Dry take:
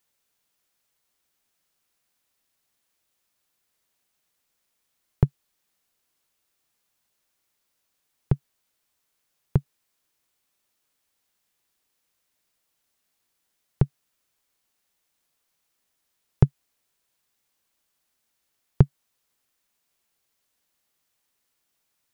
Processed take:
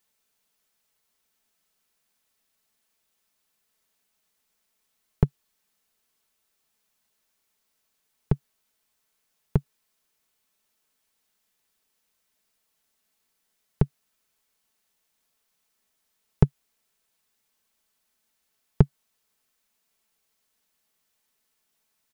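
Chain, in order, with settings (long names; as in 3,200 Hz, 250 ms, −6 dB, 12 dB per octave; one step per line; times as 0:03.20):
comb filter 4.6 ms, depth 41%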